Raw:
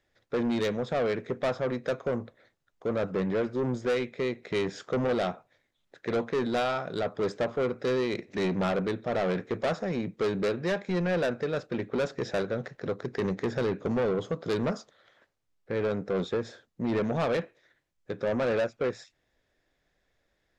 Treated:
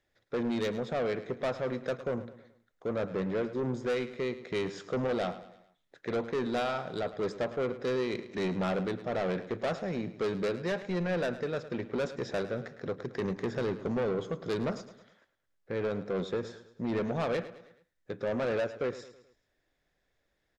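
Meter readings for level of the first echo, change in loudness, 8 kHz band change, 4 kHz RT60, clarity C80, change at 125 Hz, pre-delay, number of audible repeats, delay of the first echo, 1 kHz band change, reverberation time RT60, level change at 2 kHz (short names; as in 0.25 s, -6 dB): -14.5 dB, -3.5 dB, n/a, none, none, -3.5 dB, none, 4, 0.107 s, -3.5 dB, none, -3.5 dB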